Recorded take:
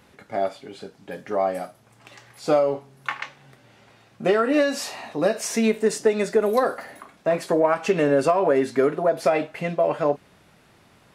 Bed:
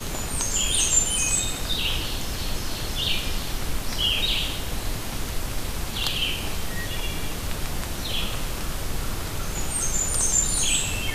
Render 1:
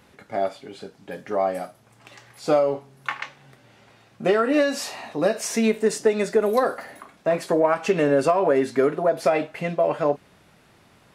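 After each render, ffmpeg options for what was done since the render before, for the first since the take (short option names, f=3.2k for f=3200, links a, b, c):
-af anull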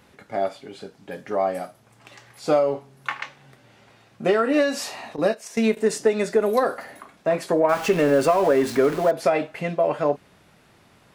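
-filter_complex "[0:a]asettb=1/sr,asplit=3[a][b][c];[a]atrim=end=5.164[d];[b]atrim=start=5.16:end=5.77,asetpts=PTS-STARTPTS,afade=t=in:d=0.004:c=qsin,afade=t=out:st=0.606:d=0.004:c=qsin,agate=range=-12dB:threshold=-27dB:ratio=16:release=100:detection=peak[e];[c]atrim=start=5.766[f];[d][e]acrossfade=d=0.004:c1=hsin:c2=qsin[g];[g][f]acrossfade=d=0.004:c1=qsin:c2=hsin,asettb=1/sr,asplit=3[h][i][j];[h]atrim=end=7.694[k];[i]atrim=start=7.69:end=9.11,asetpts=PTS-STARTPTS,afade=t=in:d=0.004:c=qsin,afade=t=out:st=1.416:d=0.004:c=qsin,aeval=exprs='val(0)+0.5*0.0335*sgn(val(0))':c=same[l];[j]atrim=start=9.106[m];[k][l]acrossfade=d=0.004:c1=hsin:c2=qsin[n];[n][m]acrossfade=d=0.004:c1=qsin:c2=hsin"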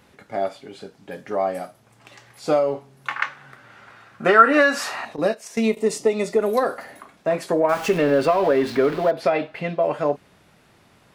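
-filter_complex "[0:a]asettb=1/sr,asplit=3[a][b][c];[a]atrim=end=3.164[d];[b]atrim=start=3.16:end=5.05,asetpts=PTS-STARTPTS,afade=t=in:d=0.004:c=qsin,afade=t=out:st=1.886:d=0.004:c=qsin,equalizer=f=1.4k:t=o:w=1.1:g=14.5[e];[c]atrim=start=5.046[f];[d][e]acrossfade=d=0.004:c1=hsin:c2=qsin[g];[g][f]acrossfade=d=0.004:c1=qsin:c2=hsin,asettb=1/sr,asplit=3[h][i][j];[h]atrim=end=5.604[k];[i]atrim=start=5.6:end=6.39,asetpts=PTS-STARTPTS,afade=t=in:d=0.004:c=qsin,afade=t=out:st=0.786:d=0.004:c=qsin,asuperstop=centerf=1600:order=4:qfactor=3.4[l];[j]atrim=start=6.386[m];[k][l]acrossfade=d=0.004:c1=hsin:c2=qsin[n];[n][m]acrossfade=d=0.004:c1=qsin:c2=hsin,asettb=1/sr,asplit=3[o][p][q];[o]atrim=end=7.984[r];[p]atrim=start=7.98:end=9.83,asetpts=PTS-STARTPTS,afade=t=in:d=0.004:c=qsin,afade=t=out:st=1.846:d=0.004:c=qsin,highshelf=f=5.4k:t=q:w=1.5:g=-7.5[s];[q]atrim=start=9.826[t];[r][s]acrossfade=d=0.004:c1=hsin:c2=qsin[u];[u][t]acrossfade=d=0.004:c1=qsin:c2=hsin"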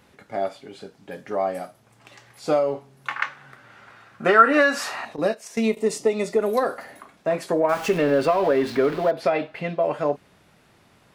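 -af "volume=-1.5dB"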